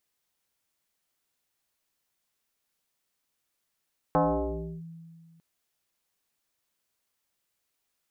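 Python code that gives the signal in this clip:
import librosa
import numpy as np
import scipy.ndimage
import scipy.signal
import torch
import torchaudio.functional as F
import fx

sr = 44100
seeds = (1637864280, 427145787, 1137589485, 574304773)

y = fx.fm2(sr, length_s=1.25, level_db=-18.5, carrier_hz=165.0, ratio=1.37, index=4.2, index_s=0.67, decay_s=2.01, shape='linear')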